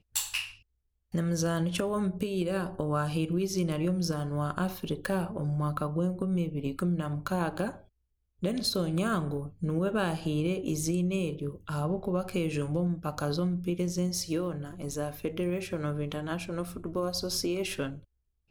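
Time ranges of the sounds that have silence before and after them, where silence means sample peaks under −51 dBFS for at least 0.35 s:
0:01.12–0:07.88
0:08.42–0:18.04

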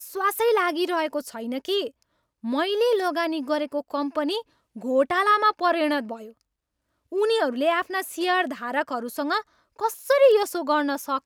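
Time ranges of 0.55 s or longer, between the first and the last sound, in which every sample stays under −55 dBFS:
0:06.41–0:07.12

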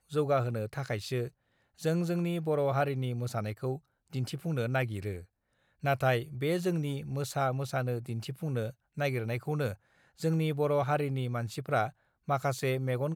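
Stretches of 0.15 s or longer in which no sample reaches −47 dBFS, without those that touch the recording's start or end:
0:01.29–0:01.79
0:03.78–0:04.13
0:05.24–0:05.83
0:08.72–0:08.97
0:09.75–0:10.19
0:11.90–0:12.28

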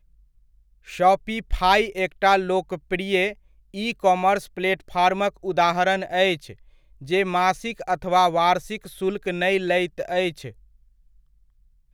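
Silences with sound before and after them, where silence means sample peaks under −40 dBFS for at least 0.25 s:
0:03.33–0:03.74
0:06.53–0:07.01

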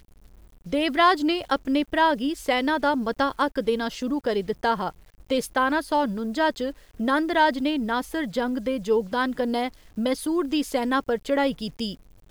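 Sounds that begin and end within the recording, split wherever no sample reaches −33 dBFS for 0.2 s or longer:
0:00.66–0:04.90
0:05.30–0:06.71
0:07.00–0:09.69
0:09.98–0:11.94

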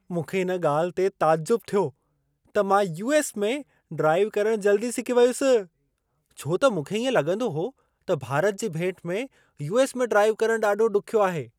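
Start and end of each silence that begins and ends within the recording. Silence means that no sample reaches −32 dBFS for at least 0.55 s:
0:01.88–0:02.55
0:05.63–0:06.39

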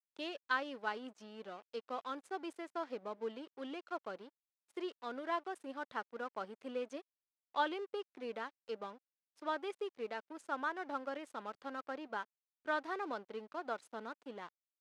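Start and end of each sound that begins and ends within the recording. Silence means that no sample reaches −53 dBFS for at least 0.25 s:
0:04.77–0:07.01
0:07.54–0:08.97
0:09.38–0:12.24
0:12.66–0:14.49

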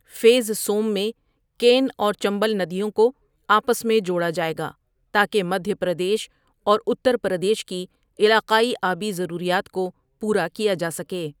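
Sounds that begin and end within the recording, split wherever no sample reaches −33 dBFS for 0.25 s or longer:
0:01.60–0:03.10
0:03.49–0:04.71
0:05.14–0:06.25
0:06.67–0:07.85
0:08.19–0:09.90

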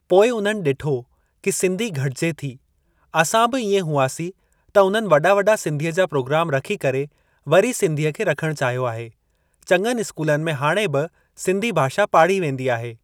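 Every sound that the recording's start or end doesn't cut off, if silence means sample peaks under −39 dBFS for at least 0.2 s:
0:01.44–0:02.56
0:03.14–0:04.31
0:04.75–0:07.07
0:07.47–0:09.10
0:09.63–0:11.07

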